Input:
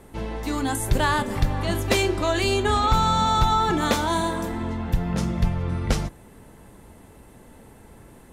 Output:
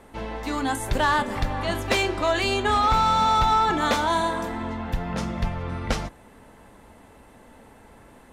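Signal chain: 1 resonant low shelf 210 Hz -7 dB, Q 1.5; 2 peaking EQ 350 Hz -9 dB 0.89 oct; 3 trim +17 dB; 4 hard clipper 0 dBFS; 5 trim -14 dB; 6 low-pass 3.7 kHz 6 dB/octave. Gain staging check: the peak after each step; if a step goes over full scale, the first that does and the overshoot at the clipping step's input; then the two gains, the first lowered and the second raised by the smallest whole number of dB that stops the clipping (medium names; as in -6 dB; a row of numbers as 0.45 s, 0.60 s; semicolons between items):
-8.0 dBFS, -9.0 dBFS, +8.0 dBFS, 0.0 dBFS, -14.0 dBFS, -14.0 dBFS; step 3, 8.0 dB; step 3 +9 dB, step 5 -6 dB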